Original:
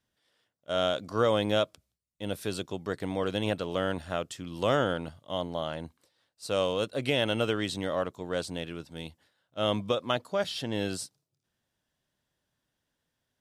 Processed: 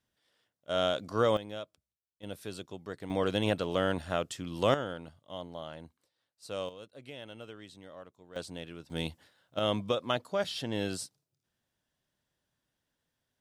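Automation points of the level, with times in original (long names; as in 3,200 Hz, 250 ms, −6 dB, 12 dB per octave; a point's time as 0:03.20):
−1.5 dB
from 0:01.37 −14.5 dB
from 0:02.23 −8 dB
from 0:03.10 +0.5 dB
from 0:04.74 −9 dB
from 0:06.69 −18.5 dB
from 0:08.36 −6.5 dB
from 0:08.90 +5.5 dB
from 0:09.59 −2 dB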